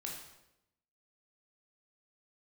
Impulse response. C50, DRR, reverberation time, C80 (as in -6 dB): 3.0 dB, -2.0 dB, 0.90 s, 6.0 dB